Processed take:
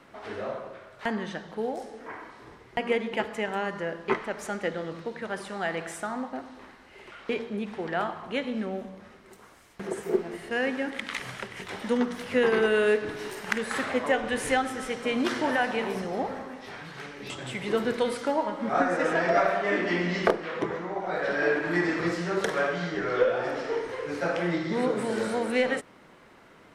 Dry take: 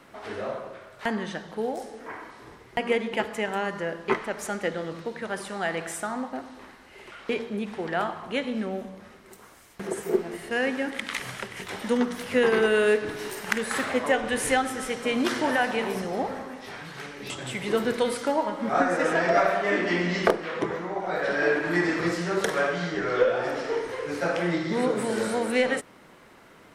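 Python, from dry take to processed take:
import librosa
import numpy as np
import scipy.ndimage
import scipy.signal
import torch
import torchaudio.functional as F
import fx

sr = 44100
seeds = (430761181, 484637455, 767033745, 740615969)

y = fx.high_shelf(x, sr, hz=8700.0, db=-9.5)
y = F.gain(torch.from_numpy(y), -1.5).numpy()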